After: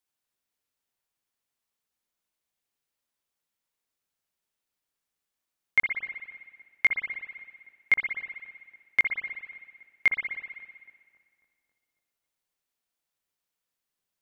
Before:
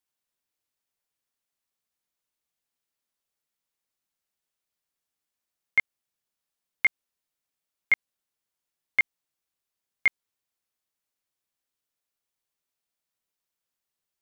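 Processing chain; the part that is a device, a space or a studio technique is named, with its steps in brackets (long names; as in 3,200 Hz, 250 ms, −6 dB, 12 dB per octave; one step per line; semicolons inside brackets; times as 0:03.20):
dub delay into a spring reverb (feedback echo with a low-pass in the loop 273 ms, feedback 61%, low-pass 2,100 Hz, level −21.5 dB; spring reverb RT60 1.7 s, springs 57 ms, chirp 40 ms, DRR 4.5 dB)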